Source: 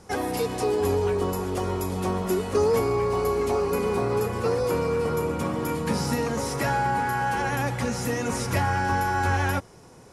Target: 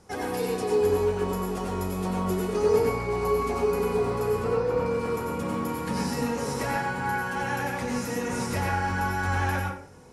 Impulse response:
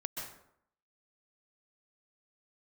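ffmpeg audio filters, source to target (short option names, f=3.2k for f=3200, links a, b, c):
-filter_complex "[0:a]asettb=1/sr,asplit=3[a][b][c];[a]atrim=end=4.444[d];[b]atrim=start=4.44:end=4.86,asetpts=PTS-STARTPTS,afade=t=in:d=0.004:c=qsin,afade=t=out:st=0.416:d=0.004:c=qsin,aemphasis=mode=reproduction:type=75fm[e];[c]atrim=start=4.856[f];[d][e]acrossfade=d=0.004:c1=hsin:c2=qsin[g];[g][f]acrossfade=d=0.004:c1=qsin:c2=hsin[h];[1:a]atrim=start_sample=2205,asetrate=61740,aresample=44100[i];[h][i]afir=irnorm=-1:irlink=0"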